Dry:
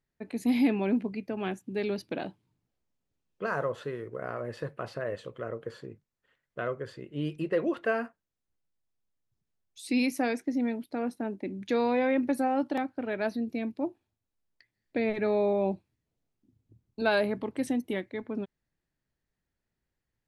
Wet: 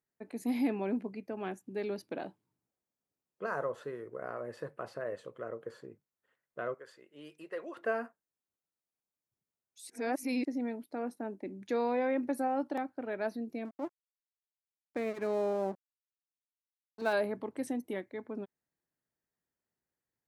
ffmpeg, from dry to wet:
-filter_complex "[0:a]asettb=1/sr,asplit=3[a][b][c];[a]atrim=end=6.744[d];[b]atrim=start=6.74:end=7.77,asetpts=PTS-STARTPTS,afade=t=in:d=0.004:c=qsin,afade=t=out:st=1.026:d=0.004:c=qsin,highpass=f=1.2k:p=1[e];[c]atrim=start=7.766[f];[d][e]acrossfade=d=0.004:c1=hsin:c2=qsin[g];[g][f]acrossfade=d=0.004:c1=qsin:c2=hsin,asettb=1/sr,asplit=3[h][i][j];[h]atrim=end=13.654[k];[i]atrim=start=13.65:end=17.13,asetpts=PTS-STARTPTS,afade=t=in:d=0.004:c=qsin,afade=t=out:st=3.476:d=0.004:c=qsin,aeval=exprs='sgn(val(0))*max(abs(val(0))-0.00891,0)':c=same[l];[j]atrim=start=17.126[m];[k][l]acrossfade=d=0.004:c1=hsin:c2=qsin[n];[n][m]acrossfade=d=0.004:c1=qsin:c2=hsin,asplit=3[o][p][q];[o]atrim=end=9.902[r];[p]atrim=start=9.898:end=10.452,asetpts=PTS-STARTPTS,areverse[s];[q]atrim=start=10.448[t];[r][s]acrossfade=d=0.004:c1=hsin:c2=hsin[u];[u][t]acrossfade=d=0.004:c1=hsin:c2=hsin,highpass=f=340:p=1,equalizer=f=3.2k:w=0.86:g=-8.5,volume=-2dB"

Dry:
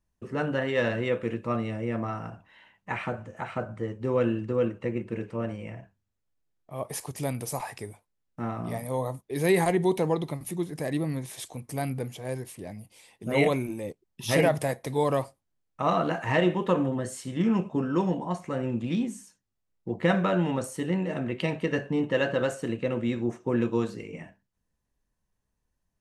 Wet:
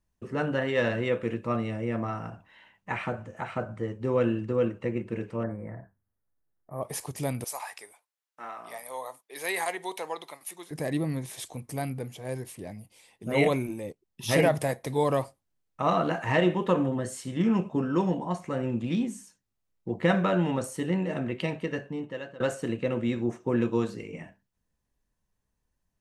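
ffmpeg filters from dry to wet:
-filter_complex "[0:a]asettb=1/sr,asplit=3[a][b][c];[a]atrim=end=5.434[d];[b]atrim=start=5.43:end=6.82,asetpts=PTS-STARTPTS,afade=t=in:d=0.004:c=qsin,afade=t=out:st=1.386:d=0.004:c=qsin,asuperstop=centerf=4400:order=12:qfactor=0.61[e];[c]atrim=start=6.816[f];[d][e]acrossfade=d=0.004:c1=hsin:c2=qsin[g];[g][f]acrossfade=d=0.004:c1=qsin:c2=hsin,asettb=1/sr,asplit=3[h][i][j];[h]atrim=end=7.444[k];[i]atrim=start=7.44:end=10.71,asetpts=PTS-STARTPTS,afade=t=in:d=0.004:c=qsin,afade=t=out:st=3.266:d=0.004:c=qsin,highpass=850[l];[j]atrim=start=10.706[m];[k][l]acrossfade=d=0.004:c1=hsin:c2=qsin[n];[n][m]acrossfade=d=0.004:c1=qsin:c2=hsin,asettb=1/sr,asplit=3[o][p][q];[o]atrim=end=11.544[r];[p]atrim=start=11.54:end=14.23,asetpts=PTS-STARTPTS,afade=t=in:d=0.004:c=qsin,afade=t=out:st=2.686:d=0.004:c=qsin,tremolo=f=1:d=0.28[s];[q]atrim=start=14.226[t];[r][s]acrossfade=d=0.004:c1=hsin:c2=qsin[u];[u][t]acrossfade=d=0.004:c1=qsin:c2=hsin,asplit=2[v][w];[v]atrim=end=22.4,asetpts=PTS-STARTPTS,afade=t=out:st=21.2:d=1.2:silence=0.0841395[x];[w]atrim=start=22.4,asetpts=PTS-STARTPTS,afade=t=in:d=0.004:c=hsin:silence=0.0841395[y];[x][y]concat=n=2:v=0:a=1"

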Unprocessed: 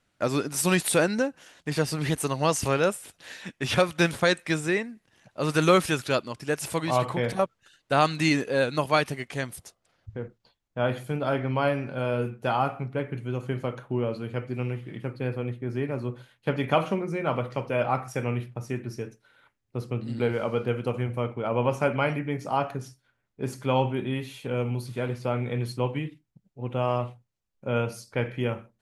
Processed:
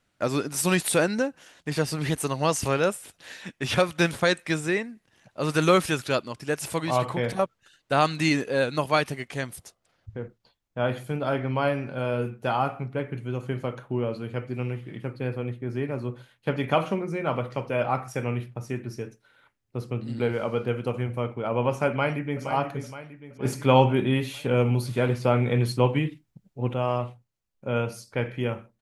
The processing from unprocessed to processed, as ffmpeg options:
-filter_complex "[0:a]asplit=2[a][b];[b]afade=t=in:st=21.89:d=0.01,afade=t=out:st=22.43:d=0.01,aecho=0:1:470|940|1410|1880|2350|2820:0.354813|0.177407|0.0887033|0.0443517|0.0221758|0.0110879[c];[a][c]amix=inputs=2:normalize=0,asplit=3[d][e][f];[d]atrim=end=23.452[g];[e]atrim=start=23.448:end=26.742,asetpts=PTS-STARTPTS,volume=6dB[h];[f]atrim=start=26.738[i];[g][h]acrossfade=d=0.004:c1=hsin:c2=hsin[j];[j][i]acrossfade=d=0.004:c1=hsin:c2=hsin"

